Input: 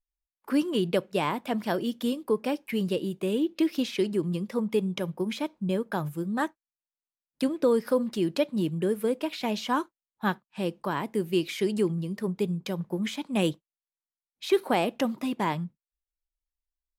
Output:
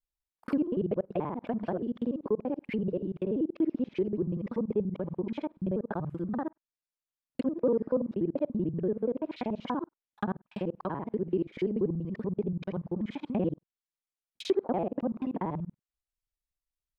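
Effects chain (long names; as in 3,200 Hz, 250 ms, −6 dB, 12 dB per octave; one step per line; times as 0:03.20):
reversed piece by piece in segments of 48 ms
treble cut that deepens with the level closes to 720 Hz, closed at −25 dBFS
level −2.5 dB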